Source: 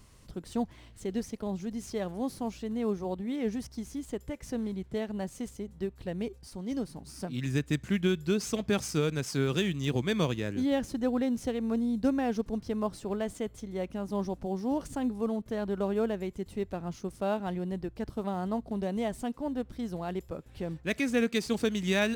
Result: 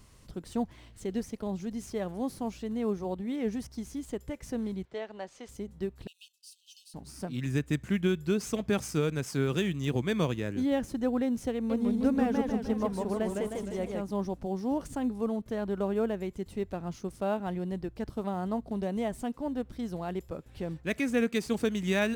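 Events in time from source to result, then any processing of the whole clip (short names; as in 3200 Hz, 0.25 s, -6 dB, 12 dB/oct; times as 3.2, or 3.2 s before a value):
4.85–5.49 three-band isolator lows -18 dB, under 390 Hz, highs -24 dB, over 6100 Hz
6.07–6.94 brick-wall FIR high-pass 2500 Hz
11.54–14.02 warbling echo 0.154 s, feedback 56%, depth 195 cents, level -3.5 dB
whole clip: dynamic EQ 4500 Hz, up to -5 dB, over -51 dBFS, Q 1.1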